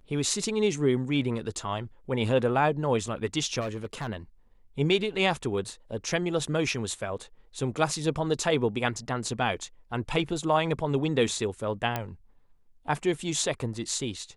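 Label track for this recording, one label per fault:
3.600000	4.080000	clipped -28.5 dBFS
11.960000	11.960000	pop -14 dBFS

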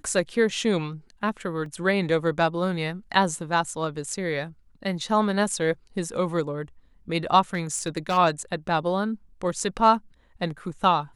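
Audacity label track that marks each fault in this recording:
1.660000	1.660000	dropout 2.2 ms
7.530000	8.180000	clipped -20 dBFS

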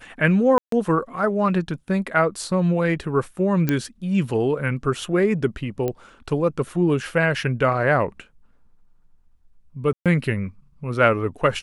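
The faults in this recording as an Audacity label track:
0.580000	0.720000	dropout 143 ms
3.690000	3.690000	pop -8 dBFS
5.880000	5.880000	pop -13 dBFS
9.930000	10.060000	dropout 127 ms

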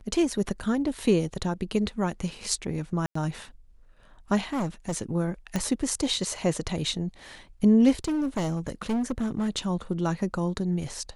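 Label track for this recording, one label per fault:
3.060000	3.150000	dropout 94 ms
4.530000	4.950000	clipped -24.5 dBFS
5.560000	5.560000	pop -13 dBFS
8.040000	9.490000	clipped -23.5 dBFS

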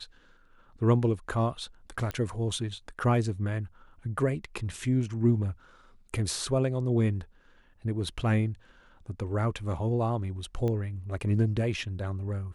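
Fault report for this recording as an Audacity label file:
2.110000	2.110000	pop -20 dBFS
10.680000	10.680000	pop -21 dBFS

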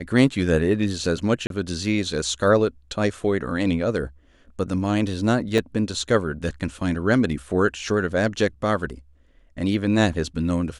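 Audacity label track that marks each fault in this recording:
1.470000	1.500000	dropout 32 ms
5.580000	5.580000	dropout 2.8 ms

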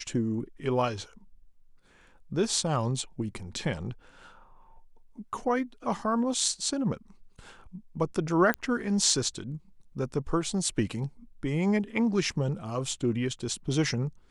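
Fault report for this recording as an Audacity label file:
8.540000	8.540000	pop -14 dBFS

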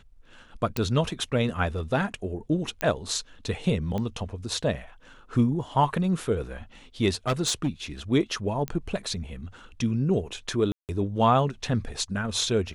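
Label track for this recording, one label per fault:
0.770000	0.770000	pop -11 dBFS
2.810000	2.810000	pop -12 dBFS
3.980000	3.980000	pop -19 dBFS
7.280000	7.690000	clipped -19.5 dBFS
8.680000	8.680000	pop -16 dBFS
10.720000	10.890000	dropout 168 ms

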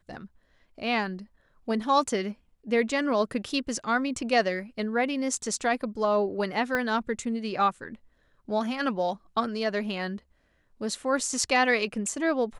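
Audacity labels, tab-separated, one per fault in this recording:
6.750000	6.750000	pop -14 dBFS

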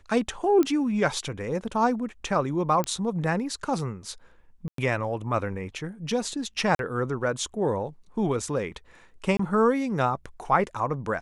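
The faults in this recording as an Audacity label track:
0.630000	0.630000	pop -14 dBFS
2.840000	2.840000	pop -13 dBFS
4.680000	4.780000	dropout 103 ms
6.750000	6.790000	dropout 42 ms
9.370000	9.390000	dropout 24 ms

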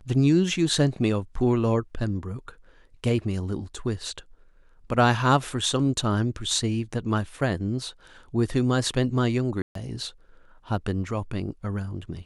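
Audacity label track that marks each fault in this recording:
9.620000	9.750000	dropout 133 ms

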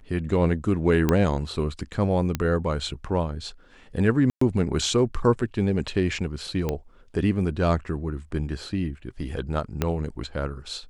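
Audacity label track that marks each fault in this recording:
1.090000	1.090000	pop -8 dBFS
2.350000	2.350000	pop -11 dBFS
4.300000	4.410000	dropout 114 ms
6.690000	6.690000	pop -13 dBFS
9.820000	9.820000	pop -9 dBFS

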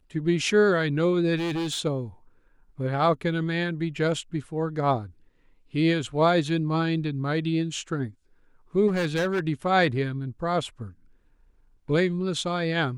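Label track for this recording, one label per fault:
1.360000	1.800000	clipped -25.5 dBFS
8.870000	9.400000	clipped -21.5 dBFS

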